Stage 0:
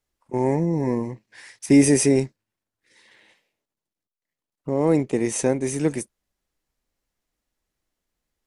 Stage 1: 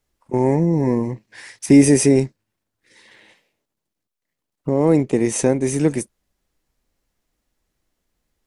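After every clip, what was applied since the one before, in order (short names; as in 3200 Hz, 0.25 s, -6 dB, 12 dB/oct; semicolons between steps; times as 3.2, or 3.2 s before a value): in parallel at -2 dB: compressor, threshold -27 dBFS, peak gain reduction 16 dB; on the sum: low shelf 480 Hz +3.5 dB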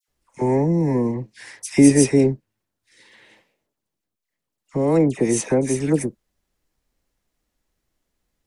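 dispersion lows, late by 83 ms, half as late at 1700 Hz; gain -1.5 dB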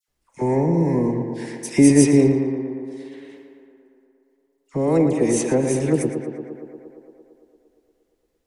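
tape echo 0.115 s, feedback 81%, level -6.5 dB, low-pass 3100 Hz; gain -1 dB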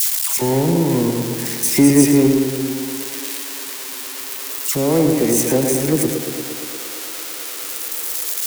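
switching spikes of -14 dBFS; reverb RT60 0.30 s, pre-delay 90 ms, DRR 12 dB; in parallel at -4.5 dB: soft clip -13 dBFS, distortion -12 dB; on the sum: gain -1.5 dB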